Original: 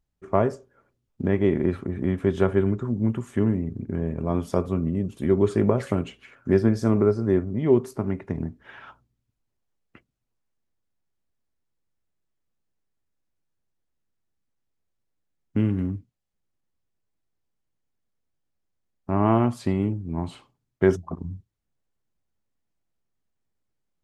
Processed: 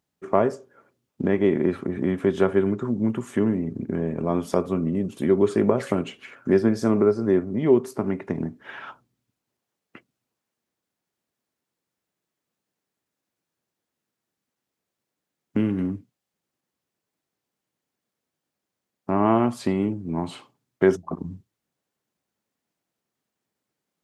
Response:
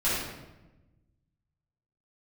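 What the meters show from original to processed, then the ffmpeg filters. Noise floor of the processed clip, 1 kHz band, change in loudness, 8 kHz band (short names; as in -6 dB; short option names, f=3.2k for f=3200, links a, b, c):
-85 dBFS, +2.0 dB, +1.0 dB, n/a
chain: -filter_complex "[0:a]highpass=180,asplit=2[a][b];[b]acompressor=threshold=-31dB:ratio=6,volume=0.5dB[c];[a][c]amix=inputs=2:normalize=0"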